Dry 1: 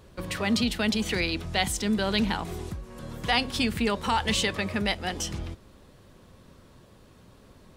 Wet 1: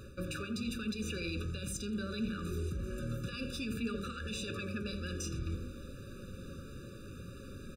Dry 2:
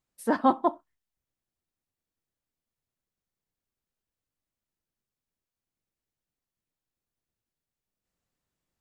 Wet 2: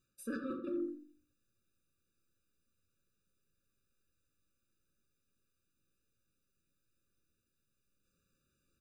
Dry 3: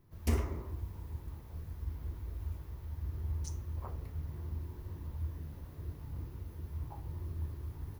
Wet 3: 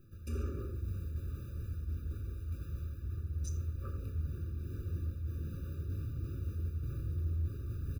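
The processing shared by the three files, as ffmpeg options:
-filter_complex "[0:a]bandreject=frequency=470:width=12,bandreject=frequency=49.68:width_type=h:width=4,bandreject=frequency=99.36:width_type=h:width=4,bandreject=frequency=149.04:width_type=h:width=4,bandreject=frequency=198.72:width_type=h:width=4,bandreject=frequency=248.4:width_type=h:width=4,bandreject=frequency=298.08:width_type=h:width=4,bandreject=frequency=347.76:width_type=h:width=4,bandreject=frequency=397.44:width_type=h:width=4,bandreject=frequency=447.12:width_type=h:width=4,bandreject=frequency=496.8:width_type=h:width=4,alimiter=limit=-22dB:level=0:latency=1:release=43,areverse,acompressor=threshold=-41dB:ratio=8,areverse,asoftclip=type=tanh:threshold=-33.5dB,flanger=delay=8.5:depth=4.3:regen=74:speed=1.3:shape=sinusoidal,asplit=2[link_01][link_02];[link_02]adelay=84,lowpass=frequency=1400:poles=1,volume=-7dB,asplit=2[link_03][link_04];[link_04]adelay=84,lowpass=frequency=1400:poles=1,volume=0.25,asplit=2[link_05][link_06];[link_06]adelay=84,lowpass=frequency=1400:poles=1,volume=0.25[link_07];[link_03][link_05][link_07]amix=inputs=3:normalize=0[link_08];[link_01][link_08]amix=inputs=2:normalize=0,afftfilt=real='re*eq(mod(floor(b*sr/1024/580),2),0)':imag='im*eq(mod(floor(b*sr/1024/580),2),0)':win_size=1024:overlap=0.75,volume=11.5dB"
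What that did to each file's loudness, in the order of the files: −12.5, −14.5, +2.0 LU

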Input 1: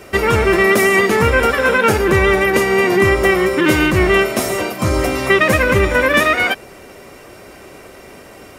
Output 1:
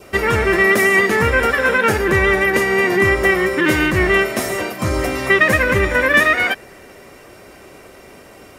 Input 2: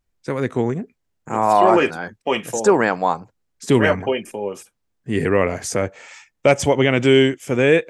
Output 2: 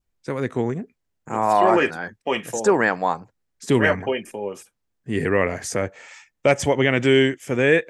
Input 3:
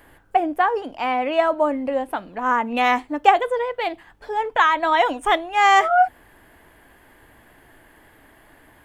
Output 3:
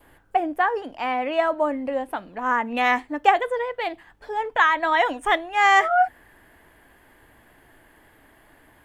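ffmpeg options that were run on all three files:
-af "adynamicequalizer=threshold=0.02:dfrequency=1800:dqfactor=4.2:tfrequency=1800:tqfactor=4.2:attack=5:release=100:ratio=0.375:range=3.5:mode=boostabove:tftype=bell,volume=-3dB"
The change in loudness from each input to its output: −1.0, −2.5, −2.0 LU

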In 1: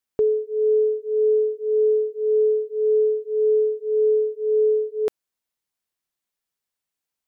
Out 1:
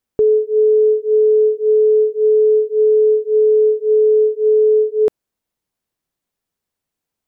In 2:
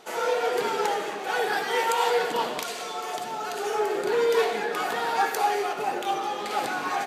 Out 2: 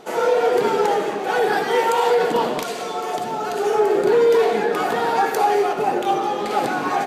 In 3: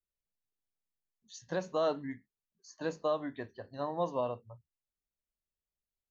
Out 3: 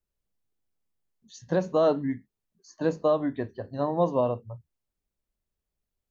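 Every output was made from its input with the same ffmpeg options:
-af "tiltshelf=frequency=790:gain=5.5,alimiter=limit=-15.5dB:level=0:latency=1:release=56,volume=7dB"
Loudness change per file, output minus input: +7.5, +7.0, +8.5 LU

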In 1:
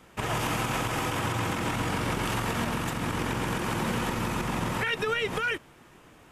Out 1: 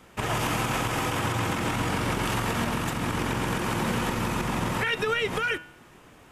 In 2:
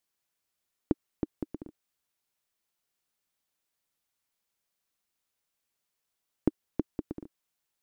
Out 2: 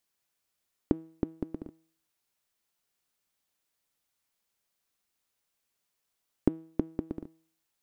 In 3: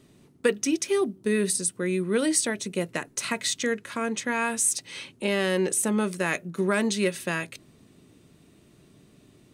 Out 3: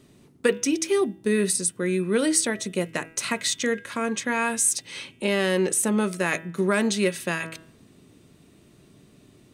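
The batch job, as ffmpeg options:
-af "bandreject=frequency=161.8:width_type=h:width=4,bandreject=frequency=323.6:width_type=h:width=4,bandreject=frequency=485.4:width_type=h:width=4,bandreject=frequency=647.2:width_type=h:width=4,bandreject=frequency=809:width_type=h:width=4,bandreject=frequency=970.8:width_type=h:width=4,bandreject=frequency=1132.6:width_type=h:width=4,bandreject=frequency=1294.4:width_type=h:width=4,bandreject=frequency=1456.2:width_type=h:width=4,bandreject=frequency=1618:width_type=h:width=4,bandreject=frequency=1779.8:width_type=h:width=4,bandreject=frequency=1941.6:width_type=h:width=4,bandreject=frequency=2103.4:width_type=h:width=4,bandreject=frequency=2265.2:width_type=h:width=4,bandreject=frequency=2427:width_type=h:width=4,bandreject=frequency=2588.8:width_type=h:width=4,bandreject=frequency=2750.6:width_type=h:width=4,bandreject=frequency=2912.4:width_type=h:width=4,bandreject=frequency=3074.2:width_type=h:width=4,bandreject=frequency=3236:width_type=h:width=4,bandreject=frequency=3397.8:width_type=h:width=4,bandreject=frequency=3559.6:width_type=h:width=4,bandreject=frequency=3721.4:width_type=h:width=4,volume=2dB"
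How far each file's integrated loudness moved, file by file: +2.0, +2.0, +2.0 LU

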